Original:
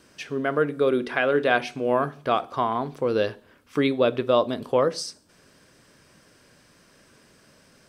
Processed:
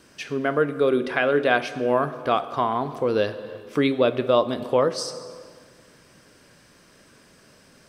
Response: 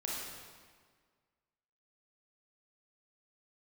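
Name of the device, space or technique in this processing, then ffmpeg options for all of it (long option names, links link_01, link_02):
ducked reverb: -filter_complex "[0:a]asplit=3[link_01][link_02][link_03];[1:a]atrim=start_sample=2205[link_04];[link_02][link_04]afir=irnorm=-1:irlink=0[link_05];[link_03]apad=whole_len=347742[link_06];[link_05][link_06]sidechaincompress=threshold=-27dB:ratio=3:attack=33:release=455,volume=-8.5dB[link_07];[link_01][link_07]amix=inputs=2:normalize=0"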